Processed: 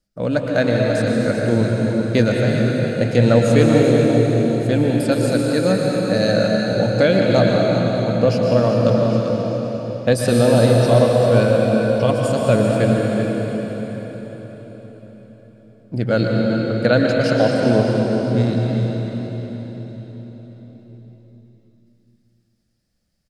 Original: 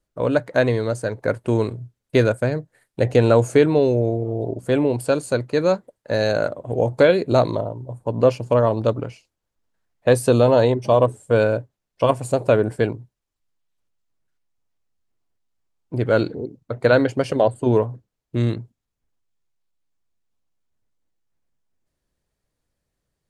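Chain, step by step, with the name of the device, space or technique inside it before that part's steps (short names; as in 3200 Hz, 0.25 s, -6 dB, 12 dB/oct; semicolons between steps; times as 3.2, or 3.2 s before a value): thirty-one-band EQ 200 Hz +11 dB, 400 Hz -7 dB, 1000 Hz -10 dB, 5000 Hz +11 dB; cave (echo 0.391 s -10 dB; reverb RT60 4.8 s, pre-delay 0.106 s, DRR -1 dB)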